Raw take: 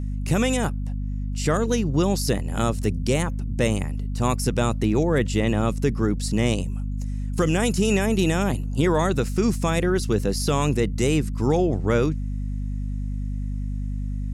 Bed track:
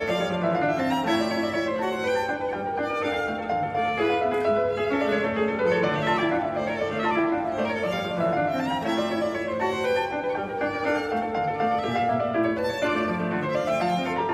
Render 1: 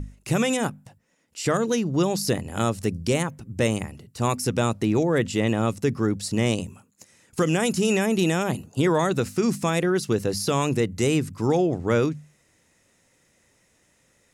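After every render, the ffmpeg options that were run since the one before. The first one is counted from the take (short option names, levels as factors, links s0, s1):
-af "bandreject=f=50:t=h:w=6,bandreject=f=100:t=h:w=6,bandreject=f=150:t=h:w=6,bandreject=f=200:t=h:w=6,bandreject=f=250:t=h:w=6"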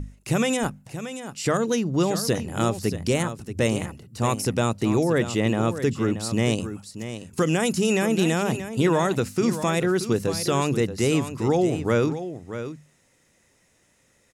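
-af "aecho=1:1:630:0.282"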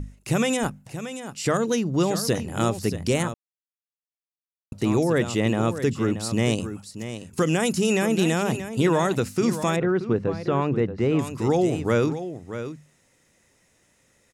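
-filter_complex "[0:a]asettb=1/sr,asplit=3[s0][s1][s2];[s0]atrim=end=9.764[s3];[s1]atrim=start=9.76:end=11.19,asetpts=PTS-STARTPTS,afade=t=in:d=0.004:c=qsin,afade=t=out:st=1.426:d=0.004:c=qsin,lowpass=1800[s4];[s2]atrim=start=11.186[s5];[s3][s4]acrossfade=d=0.004:c1=hsin:c2=qsin[s6];[s6][s5]acrossfade=d=0.004:c1=qsin:c2=hsin,asplit=3[s7][s8][s9];[s7]atrim=end=3.34,asetpts=PTS-STARTPTS,afade=t=out:st=3.336:d=0.004:c=hsin[s10];[s8]atrim=start=3.34:end=4.72,asetpts=PTS-STARTPTS,volume=0[s11];[s9]atrim=start=4.72,asetpts=PTS-STARTPTS,afade=t=in:d=0.004:c=hsin[s12];[s10][s11][s12]concat=n=3:v=0:a=1"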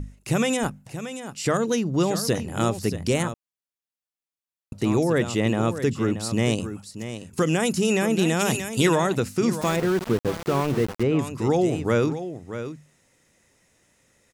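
-filter_complex "[0:a]asplit=3[s0][s1][s2];[s0]afade=t=out:st=8.39:d=0.02[s3];[s1]highshelf=f=2300:g=11.5,afade=t=in:st=8.39:d=0.02,afade=t=out:st=8.94:d=0.02[s4];[s2]afade=t=in:st=8.94:d=0.02[s5];[s3][s4][s5]amix=inputs=3:normalize=0,asettb=1/sr,asplit=3[s6][s7][s8];[s6]atrim=end=9.614[s9];[s7]atrim=start=9.61:end=11.03,asetpts=PTS-STARTPTS,afade=t=in:d=0.004:c=qsin,afade=t=out:st=1.416:d=0.004:c=qsin,aeval=exprs='val(0)*gte(abs(val(0)),0.0376)':c=same[s10];[s8]atrim=start=11.026[s11];[s9][s10]acrossfade=d=0.004:c1=hsin:c2=qsin[s12];[s12][s11]acrossfade=d=0.004:c1=qsin:c2=hsin"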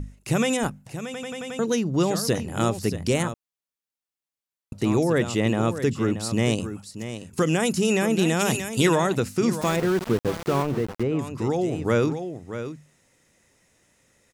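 -filter_complex "[0:a]asettb=1/sr,asplit=3[s0][s1][s2];[s0]atrim=end=10.624[s3];[s1]atrim=start=10.62:end=11.82,asetpts=PTS-STARTPTS,afade=t=in:d=0.004:c=qsin,afade=t=out:st=1.196:d=0.004:c=qsin,acrossover=split=1600|6400[s4][s5][s6];[s4]acompressor=threshold=0.0891:ratio=4[s7];[s5]acompressor=threshold=0.00562:ratio=4[s8];[s6]acompressor=threshold=0.00251:ratio=4[s9];[s7][s8][s9]amix=inputs=3:normalize=0[s10];[s2]atrim=start=11.816[s11];[s3][s10]acrossfade=d=0.004:c1=hsin:c2=qsin[s12];[s12][s11]acrossfade=d=0.004:c1=qsin:c2=hsin,asplit=7[s13][s14][s15][s16][s17][s18][s19];[s13]atrim=end=1.142[s20];[s14]atrim=start=1.048:end=1.142[s21];[s15]atrim=start=1.048:end=1.142[s22];[s16]atrim=start=1.048:end=1.142[s23];[s17]atrim=start=1.048:end=1.142[s24];[s18]atrim=start=1.048:end=1.142[s25];[s19]atrim=start=1.588[s26];[s20][s21]acrossfade=d=0.004:c1=hsin:c2=hsin[s27];[s27][s22]acrossfade=d=0.004:c1=hsin:c2=hsin[s28];[s28][s23]acrossfade=d=0.004:c1=hsin:c2=hsin[s29];[s29][s24]acrossfade=d=0.004:c1=hsin:c2=hsin[s30];[s30][s25]acrossfade=d=0.004:c1=hsin:c2=hsin[s31];[s31][s26]acrossfade=d=0.004:c1=hsin:c2=hsin"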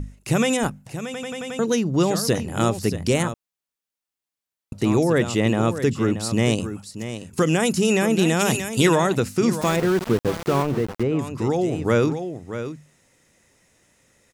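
-af "volume=1.33"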